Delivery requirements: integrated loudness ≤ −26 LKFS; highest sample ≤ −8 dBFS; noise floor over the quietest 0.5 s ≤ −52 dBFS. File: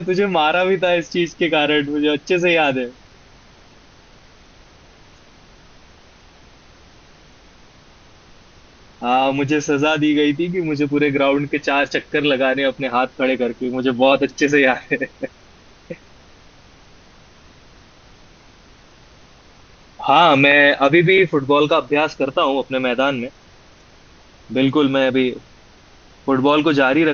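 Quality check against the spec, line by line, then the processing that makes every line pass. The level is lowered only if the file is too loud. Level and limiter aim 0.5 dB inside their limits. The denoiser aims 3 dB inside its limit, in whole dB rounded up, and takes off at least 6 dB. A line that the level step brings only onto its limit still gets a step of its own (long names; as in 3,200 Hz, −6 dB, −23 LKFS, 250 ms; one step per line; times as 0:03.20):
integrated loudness −17.0 LKFS: out of spec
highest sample −1.5 dBFS: out of spec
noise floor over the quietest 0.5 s −47 dBFS: out of spec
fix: level −9.5 dB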